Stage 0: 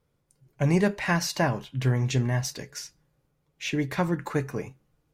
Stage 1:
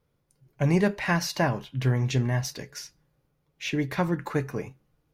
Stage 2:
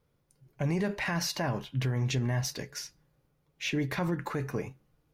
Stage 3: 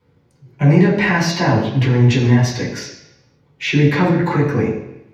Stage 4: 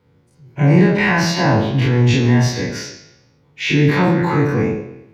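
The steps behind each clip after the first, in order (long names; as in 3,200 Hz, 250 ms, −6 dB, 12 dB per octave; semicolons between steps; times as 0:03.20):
parametric band 7,800 Hz −6 dB 0.46 octaves
brickwall limiter −22 dBFS, peak gain reduction 10 dB
convolution reverb RT60 0.85 s, pre-delay 3 ms, DRR −7.5 dB; level −2 dB
every bin's largest magnitude spread in time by 60 ms; level −3 dB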